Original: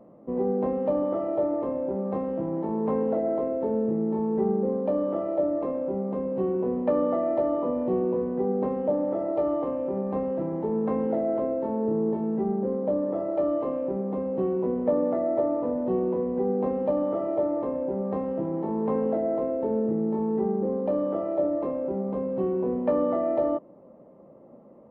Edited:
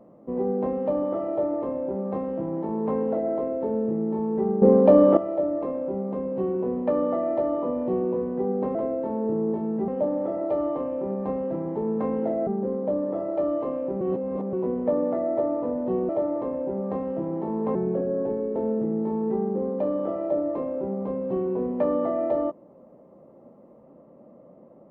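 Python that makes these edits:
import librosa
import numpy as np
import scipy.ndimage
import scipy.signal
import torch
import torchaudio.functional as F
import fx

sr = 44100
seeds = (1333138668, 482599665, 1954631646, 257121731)

y = fx.edit(x, sr, fx.clip_gain(start_s=4.62, length_s=0.55, db=11.0),
    fx.move(start_s=11.34, length_s=1.13, to_s=8.75),
    fx.reverse_span(start_s=14.01, length_s=0.52),
    fx.cut(start_s=16.09, length_s=1.21),
    fx.speed_span(start_s=18.96, length_s=0.67, speed=0.83), tone=tone)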